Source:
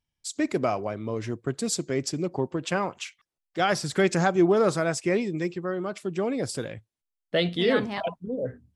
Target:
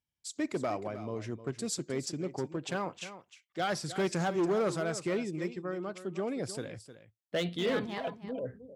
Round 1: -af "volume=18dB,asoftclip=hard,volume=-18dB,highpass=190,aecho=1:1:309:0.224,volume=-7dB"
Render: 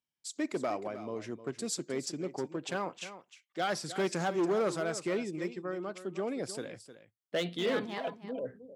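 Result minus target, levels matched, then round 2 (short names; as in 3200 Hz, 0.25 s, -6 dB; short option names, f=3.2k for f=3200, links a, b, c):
125 Hz band -4.0 dB
-af "volume=18dB,asoftclip=hard,volume=-18dB,highpass=54,aecho=1:1:309:0.224,volume=-7dB"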